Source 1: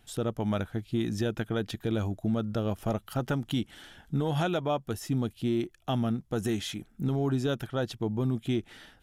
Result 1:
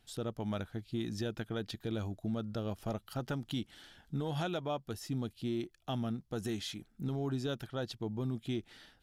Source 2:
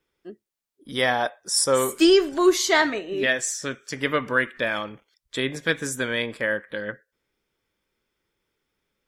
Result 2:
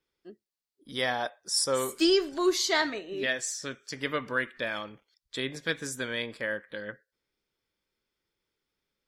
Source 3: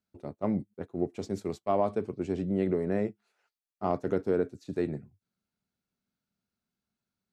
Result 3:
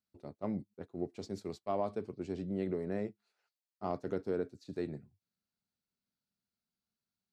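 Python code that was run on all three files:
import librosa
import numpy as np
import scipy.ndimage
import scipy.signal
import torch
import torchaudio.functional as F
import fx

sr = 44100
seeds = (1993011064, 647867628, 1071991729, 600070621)

y = fx.peak_eq(x, sr, hz=4500.0, db=7.0, octaves=0.6)
y = y * 10.0 ** (-7.5 / 20.0)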